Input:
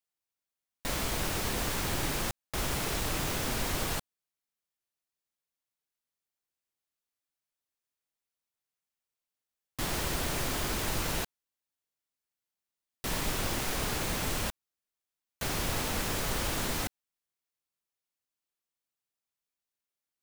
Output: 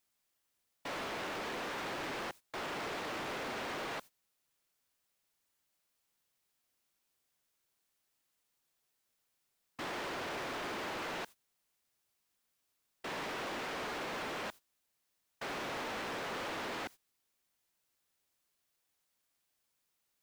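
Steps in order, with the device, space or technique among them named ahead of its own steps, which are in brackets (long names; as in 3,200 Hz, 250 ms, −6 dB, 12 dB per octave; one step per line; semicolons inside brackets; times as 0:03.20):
aircraft radio (band-pass filter 320–2,500 Hz; hard clipping −39 dBFS, distortion −8 dB; white noise bed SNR 19 dB; noise gate −52 dBFS, range −18 dB)
level +1.5 dB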